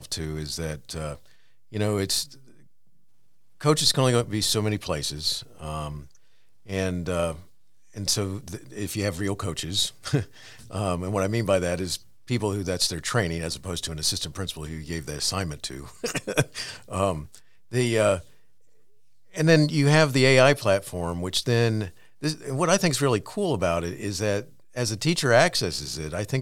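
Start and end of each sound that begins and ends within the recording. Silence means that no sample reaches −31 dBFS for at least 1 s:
0:03.61–0:18.19

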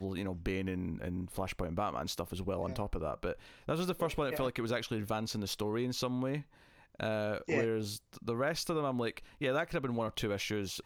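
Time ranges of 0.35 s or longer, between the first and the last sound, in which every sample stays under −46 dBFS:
0:06.42–0:06.95

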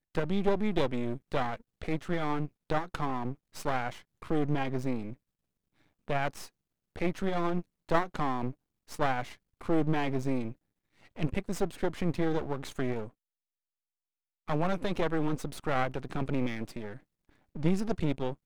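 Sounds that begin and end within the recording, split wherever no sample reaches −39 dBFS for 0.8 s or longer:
0:06.08–0:13.08

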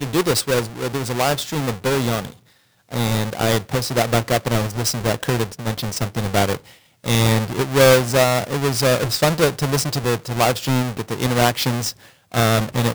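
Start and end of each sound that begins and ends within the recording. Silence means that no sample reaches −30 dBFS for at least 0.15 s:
0:02.92–0:06.57
0:07.04–0:11.91

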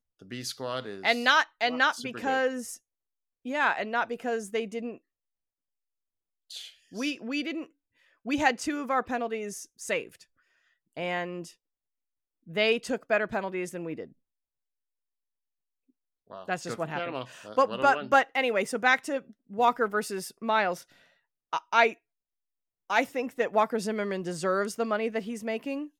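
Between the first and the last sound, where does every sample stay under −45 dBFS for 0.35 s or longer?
0:02.77–0:03.45
0:04.97–0:06.50
0:07.66–0:08.25
0:10.22–0:10.97
0:11.51–0:12.47
0:14.07–0:16.30
0:20.83–0:21.53
0:21.94–0:22.90

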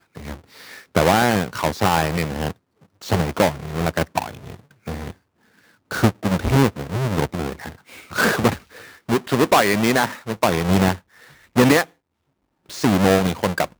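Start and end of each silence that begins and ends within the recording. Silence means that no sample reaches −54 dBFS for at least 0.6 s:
0:11.93–0:12.66

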